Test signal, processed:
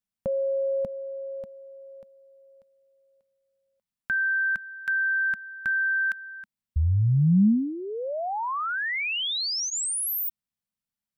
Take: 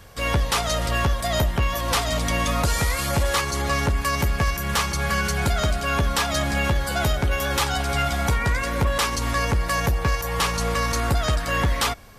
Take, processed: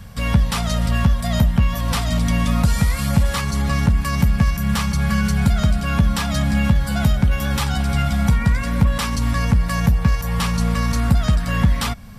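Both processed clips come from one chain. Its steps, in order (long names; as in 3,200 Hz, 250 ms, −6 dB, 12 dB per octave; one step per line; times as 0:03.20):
low shelf with overshoot 270 Hz +8 dB, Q 3
notch filter 6,500 Hz, Q 17
in parallel at −2 dB: downward compressor, threshold −27 dBFS
on the sum: level −3.5 dB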